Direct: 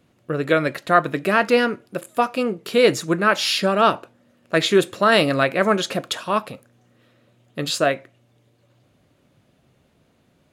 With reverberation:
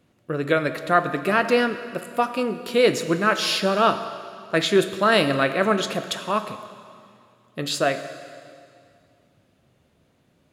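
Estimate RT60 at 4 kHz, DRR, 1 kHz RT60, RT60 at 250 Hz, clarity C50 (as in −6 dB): 2.1 s, 9.5 dB, 2.3 s, 2.4 s, 11.0 dB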